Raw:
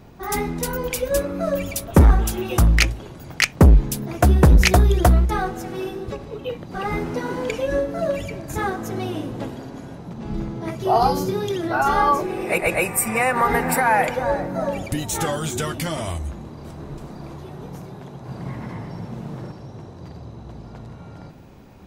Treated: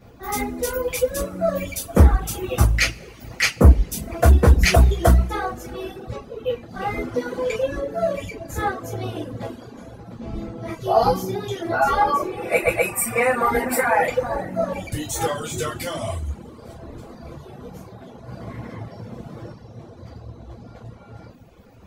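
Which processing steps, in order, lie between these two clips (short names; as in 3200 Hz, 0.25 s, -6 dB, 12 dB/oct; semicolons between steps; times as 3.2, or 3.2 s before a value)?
two-slope reverb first 0.32 s, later 2.2 s, from -18 dB, DRR -9 dB; reverb removal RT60 0.93 s; gain -9 dB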